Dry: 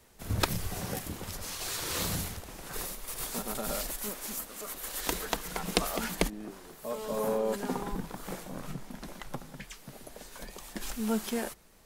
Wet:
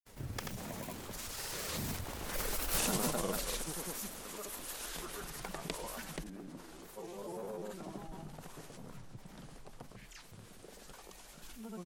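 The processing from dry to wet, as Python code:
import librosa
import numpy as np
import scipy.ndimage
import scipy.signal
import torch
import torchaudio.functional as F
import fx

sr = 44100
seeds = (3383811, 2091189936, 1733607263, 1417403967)

y = fx.doppler_pass(x, sr, speed_mps=47, closest_m=6.5, pass_at_s=2.76)
y = fx.granulator(y, sr, seeds[0], grain_ms=100.0, per_s=20.0, spray_ms=100.0, spread_st=3)
y = fx.env_flatten(y, sr, amount_pct=50)
y = y * 10.0 ** (6.0 / 20.0)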